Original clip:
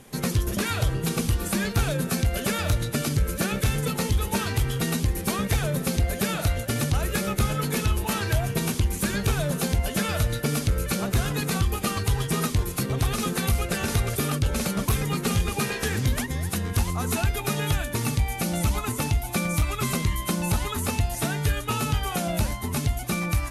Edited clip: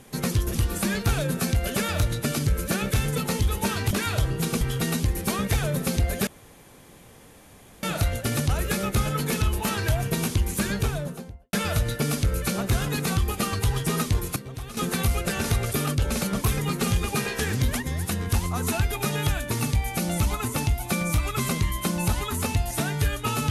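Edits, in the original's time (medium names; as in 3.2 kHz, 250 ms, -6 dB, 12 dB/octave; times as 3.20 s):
0.55–1.25 s: move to 4.61 s
6.27 s: insert room tone 1.56 s
9.08–9.97 s: studio fade out
12.80–13.21 s: gain -11.5 dB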